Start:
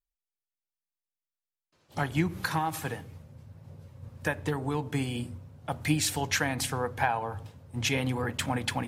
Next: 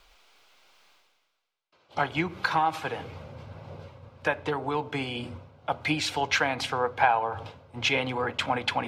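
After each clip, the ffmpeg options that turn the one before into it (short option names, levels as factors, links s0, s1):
-filter_complex "[0:a]acrossover=split=400 4600:gain=0.224 1 0.0708[s0][s1][s2];[s0][s1][s2]amix=inputs=3:normalize=0,bandreject=f=1800:w=6.5,areverse,acompressor=mode=upward:threshold=0.0126:ratio=2.5,areverse,volume=2.11"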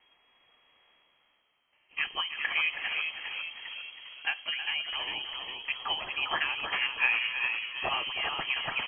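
-filter_complex "[0:a]asplit=2[s0][s1];[s1]asplit=6[s2][s3][s4][s5][s6][s7];[s2]adelay=402,afreqshift=-71,volume=0.531[s8];[s3]adelay=804,afreqshift=-142,volume=0.272[s9];[s4]adelay=1206,afreqshift=-213,volume=0.138[s10];[s5]adelay=1608,afreqshift=-284,volume=0.0708[s11];[s6]adelay=2010,afreqshift=-355,volume=0.0359[s12];[s7]adelay=2412,afreqshift=-426,volume=0.0184[s13];[s8][s9][s10][s11][s12][s13]amix=inputs=6:normalize=0[s14];[s0][s14]amix=inputs=2:normalize=0,lowpass=f=2800:t=q:w=0.5098,lowpass=f=2800:t=q:w=0.6013,lowpass=f=2800:t=q:w=0.9,lowpass=f=2800:t=q:w=2.563,afreqshift=-3300,asplit=2[s15][s16];[s16]aecho=0:1:321:0.316[s17];[s15][s17]amix=inputs=2:normalize=0,volume=0.562"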